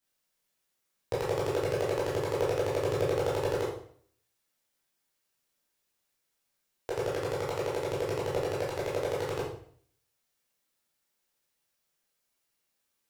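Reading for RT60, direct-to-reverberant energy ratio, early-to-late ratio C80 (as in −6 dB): 0.55 s, −7.5 dB, 7.5 dB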